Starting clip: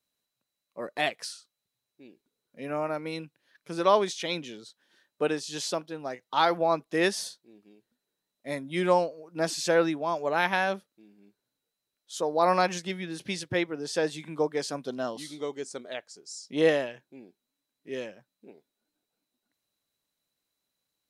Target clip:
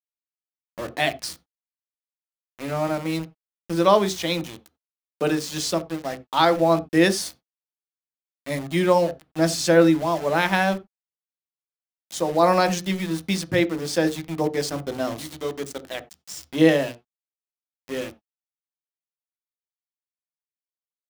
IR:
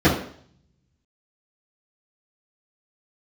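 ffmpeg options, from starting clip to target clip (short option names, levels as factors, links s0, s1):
-filter_complex "[0:a]highshelf=f=3900:g=4,aeval=exprs='val(0)*gte(abs(val(0)),0.015)':c=same,asplit=2[s0][s1];[1:a]atrim=start_sample=2205,atrim=end_sample=4410,lowshelf=f=160:g=11.5[s2];[s1][s2]afir=irnorm=-1:irlink=0,volume=0.0266[s3];[s0][s3]amix=inputs=2:normalize=0,volume=1.5"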